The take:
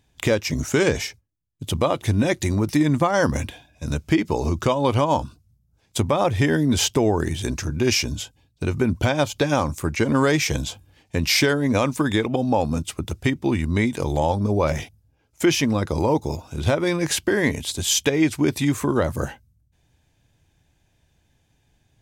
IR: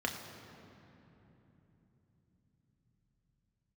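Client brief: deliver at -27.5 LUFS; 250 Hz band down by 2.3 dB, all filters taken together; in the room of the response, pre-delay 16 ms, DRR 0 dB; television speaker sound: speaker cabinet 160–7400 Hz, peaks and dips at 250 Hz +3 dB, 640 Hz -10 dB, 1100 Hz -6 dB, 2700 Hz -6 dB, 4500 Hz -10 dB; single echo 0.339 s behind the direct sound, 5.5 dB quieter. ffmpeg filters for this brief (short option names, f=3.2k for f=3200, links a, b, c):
-filter_complex "[0:a]equalizer=f=250:t=o:g=-4,aecho=1:1:339:0.531,asplit=2[a][b];[1:a]atrim=start_sample=2205,adelay=16[c];[b][c]afir=irnorm=-1:irlink=0,volume=-5.5dB[d];[a][d]amix=inputs=2:normalize=0,highpass=f=160:w=0.5412,highpass=f=160:w=1.3066,equalizer=f=250:t=q:w=4:g=3,equalizer=f=640:t=q:w=4:g=-10,equalizer=f=1.1k:t=q:w=4:g=-6,equalizer=f=2.7k:t=q:w=4:g=-6,equalizer=f=4.5k:t=q:w=4:g=-10,lowpass=f=7.4k:w=0.5412,lowpass=f=7.4k:w=1.3066,volume=-6.5dB"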